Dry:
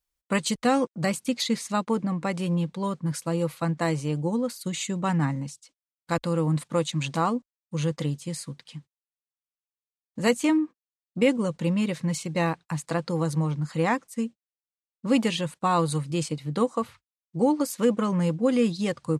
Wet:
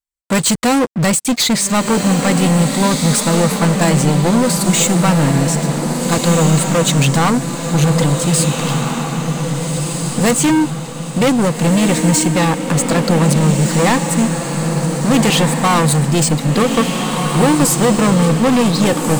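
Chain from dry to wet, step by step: peaking EQ 7.9 kHz +8 dB 0.33 oct; waveshaping leveller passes 5; on a send: echo that smears into a reverb 1650 ms, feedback 46%, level -4 dB

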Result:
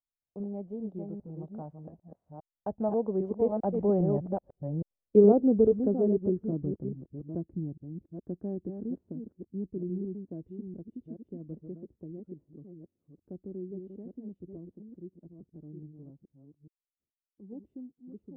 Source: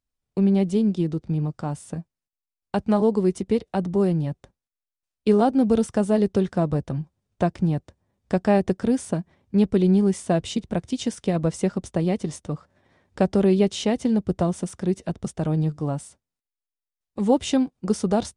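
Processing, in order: chunks repeated in reverse 412 ms, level -5.5 dB; Doppler pass-by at 4.72 s, 10 m/s, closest 7.3 m; low-pass sweep 680 Hz -> 330 Hz, 4.06–6.60 s; trim -4 dB

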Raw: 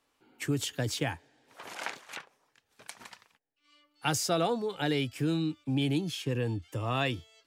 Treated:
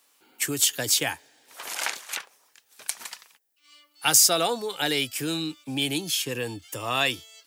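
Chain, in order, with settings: RIAA curve recording; trim +5 dB

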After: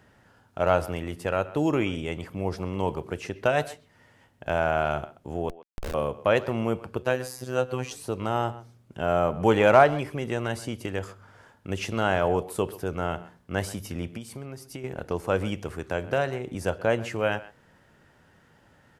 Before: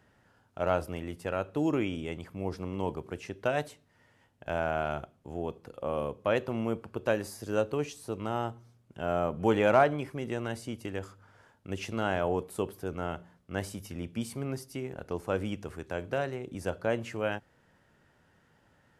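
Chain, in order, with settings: dynamic bell 270 Hz, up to -4 dB, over -40 dBFS, Q 1.4; 5.49–5.94 s: Schmitt trigger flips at -30 dBFS; 7.02–7.91 s: robot voice 127 Hz; 14.10–14.84 s: compression 10:1, threshold -41 dBFS, peak gain reduction 11 dB; speakerphone echo 130 ms, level -17 dB; trim +6.5 dB

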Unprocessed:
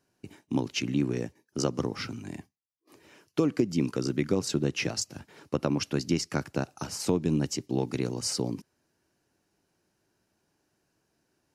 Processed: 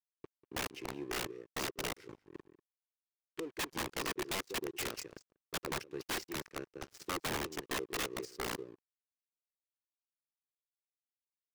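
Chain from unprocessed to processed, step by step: FFT filter 510 Hz 0 dB, 750 Hz -26 dB, 1.7 kHz +1 dB, 9.1 kHz -12 dB; waveshaping leveller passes 1; harmonic-percussive split harmonic -16 dB; resonant low shelf 300 Hz -6.5 dB, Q 3; harmonic-percussive split percussive -11 dB; crossover distortion -48 dBFS; on a send: delay 192 ms -18 dB; on the sum: trance gate "xxxxx.xx.x..x" 160 bpm -12 dB; in parallel at +1.5 dB: gain riding within 5 dB 0.5 s; on the sum: integer overflow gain 28 dB; tape noise reduction on one side only decoder only; trim -2 dB

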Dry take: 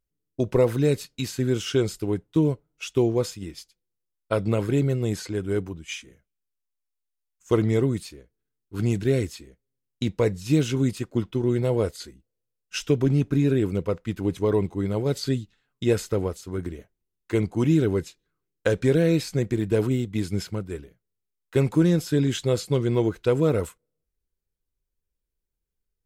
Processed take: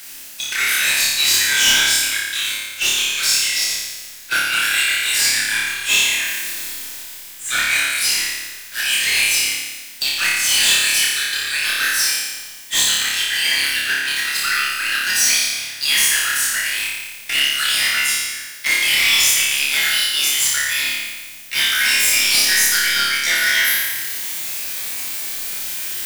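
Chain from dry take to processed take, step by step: pitch bend over the whole clip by +7.5 st starting unshifted; steep high-pass 1.5 kHz 72 dB/octave; waveshaping leveller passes 3; reverse; upward compressor, threshold -31 dBFS; reverse; power-law waveshaper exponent 0.35; flutter echo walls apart 4.9 m, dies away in 1.2 s; on a send at -12 dB: reverberation RT60 0.50 s, pre-delay 3 ms

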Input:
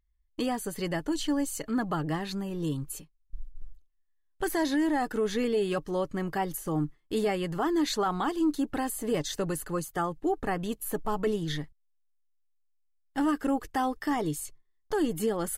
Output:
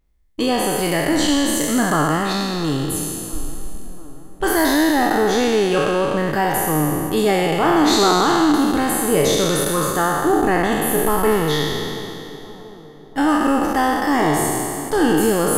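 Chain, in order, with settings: spectral sustain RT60 2.47 s; filtered feedback delay 685 ms, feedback 60%, low-pass 1.4 kHz, level -18 dB; trim +8 dB

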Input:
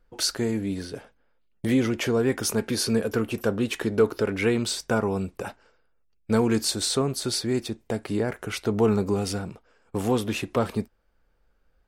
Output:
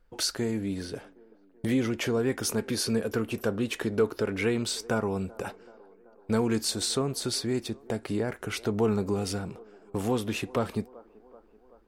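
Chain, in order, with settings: feedback echo behind a band-pass 382 ms, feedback 60%, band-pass 600 Hz, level -23 dB; in parallel at -0.5 dB: compression, threshold -31 dBFS, peak gain reduction 15.5 dB; on the sum: trim -6 dB

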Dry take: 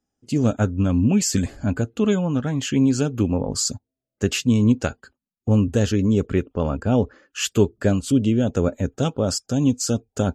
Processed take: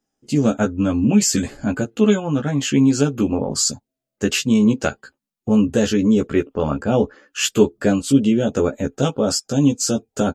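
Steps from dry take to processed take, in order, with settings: peaking EQ 65 Hz -11.5 dB 1.6 oct; doubling 14 ms -3 dB; trim +2.5 dB

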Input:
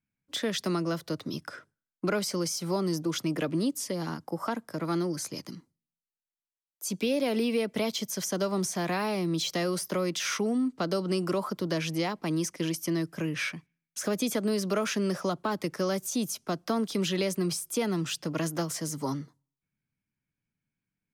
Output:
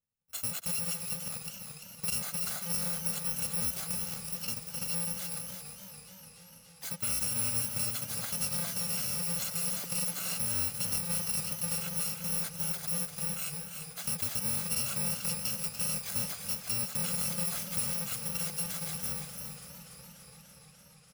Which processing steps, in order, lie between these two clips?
bit-reversed sample order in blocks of 128 samples; delay 344 ms -7.5 dB; modulated delay 291 ms, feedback 79%, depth 119 cents, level -11.5 dB; trim -5 dB

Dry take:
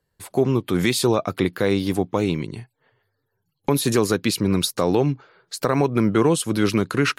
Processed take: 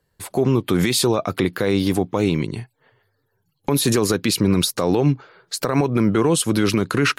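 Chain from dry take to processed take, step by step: peak limiter -13.5 dBFS, peak gain reduction 8 dB; trim +5 dB

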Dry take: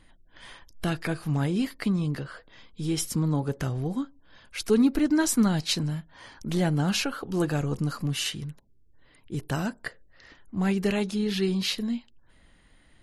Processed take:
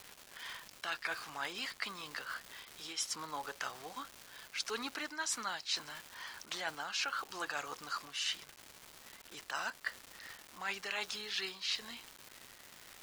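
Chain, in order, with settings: Chebyshev band-pass 1.1–6.2 kHz, order 2; crackle 570 per s -42 dBFS; reverse; compression 6:1, threshold -36 dBFS, peak gain reduction 12.5 dB; reverse; trim +2 dB

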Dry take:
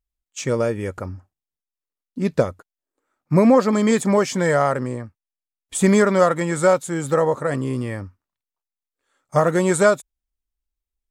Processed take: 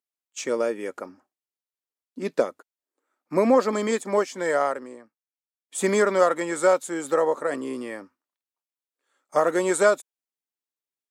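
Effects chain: high-pass 260 Hz 24 dB/octave; 3.87–5.78 s: upward expansion 1.5:1, over -32 dBFS; trim -3 dB

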